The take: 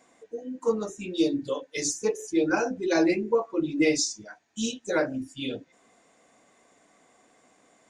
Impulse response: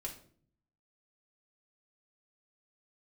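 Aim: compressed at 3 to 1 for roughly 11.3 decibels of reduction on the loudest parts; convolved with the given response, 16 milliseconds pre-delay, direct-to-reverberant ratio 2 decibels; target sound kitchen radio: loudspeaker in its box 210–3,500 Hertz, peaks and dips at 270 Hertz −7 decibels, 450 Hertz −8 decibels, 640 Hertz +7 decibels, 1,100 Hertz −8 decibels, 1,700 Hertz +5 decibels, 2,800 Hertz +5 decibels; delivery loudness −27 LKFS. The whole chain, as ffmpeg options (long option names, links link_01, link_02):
-filter_complex "[0:a]acompressor=threshold=-34dB:ratio=3,asplit=2[link_01][link_02];[1:a]atrim=start_sample=2205,adelay=16[link_03];[link_02][link_03]afir=irnorm=-1:irlink=0,volume=-0.5dB[link_04];[link_01][link_04]amix=inputs=2:normalize=0,highpass=210,equalizer=frequency=270:width_type=q:width=4:gain=-7,equalizer=frequency=450:width_type=q:width=4:gain=-8,equalizer=frequency=640:width_type=q:width=4:gain=7,equalizer=frequency=1100:width_type=q:width=4:gain=-8,equalizer=frequency=1700:width_type=q:width=4:gain=5,equalizer=frequency=2800:width_type=q:width=4:gain=5,lowpass=frequency=3500:width=0.5412,lowpass=frequency=3500:width=1.3066,volume=10dB"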